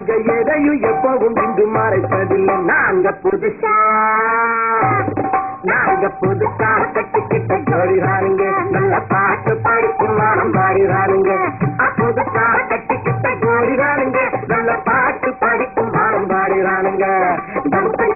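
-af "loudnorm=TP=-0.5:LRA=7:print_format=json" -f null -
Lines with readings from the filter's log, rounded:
"input_i" : "-15.3",
"input_tp" : "-2.5",
"input_lra" : "1.3",
"input_thresh" : "-25.3",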